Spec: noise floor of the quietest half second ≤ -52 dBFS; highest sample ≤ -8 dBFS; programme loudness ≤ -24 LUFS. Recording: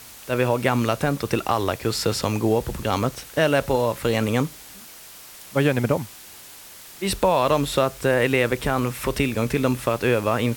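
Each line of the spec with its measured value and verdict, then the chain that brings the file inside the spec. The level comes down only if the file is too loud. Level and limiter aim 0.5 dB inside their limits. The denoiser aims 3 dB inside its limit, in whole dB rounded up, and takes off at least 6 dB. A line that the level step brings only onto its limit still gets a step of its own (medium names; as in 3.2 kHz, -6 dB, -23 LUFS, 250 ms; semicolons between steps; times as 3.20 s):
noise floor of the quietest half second -43 dBFS: fail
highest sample -4.5 dBFS: fail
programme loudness -22.5 LUFS: fail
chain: noise reduction 10 dB, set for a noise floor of -43 dBFS; trim -2 dB; peak limiter -8.5 dBFS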